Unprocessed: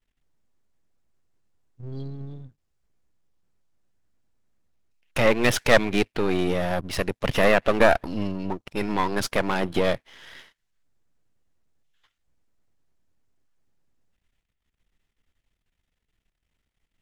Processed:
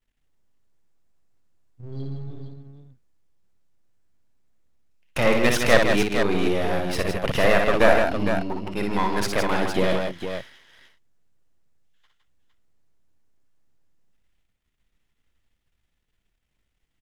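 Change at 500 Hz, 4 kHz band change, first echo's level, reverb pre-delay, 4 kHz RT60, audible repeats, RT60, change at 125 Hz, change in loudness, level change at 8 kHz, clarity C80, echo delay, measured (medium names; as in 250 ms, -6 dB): +1.5 dB, +1.5 dB, -5.0 dB, no reverb, no reverb, 3, no reverb, +1.0 dB, +1.0 dB, +1.5 dB, no reverb, 59 ms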